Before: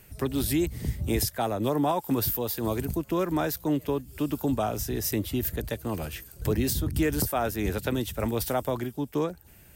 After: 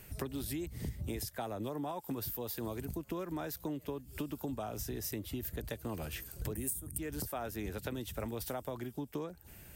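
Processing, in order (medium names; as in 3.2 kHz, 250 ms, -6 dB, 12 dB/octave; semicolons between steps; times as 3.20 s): 6.55–6.98 s: resonant high shelf 6.6 kHz +13.5 dB, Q 3; compression 8:1, threshold -36 dBFS, peak gain reduction 25 dB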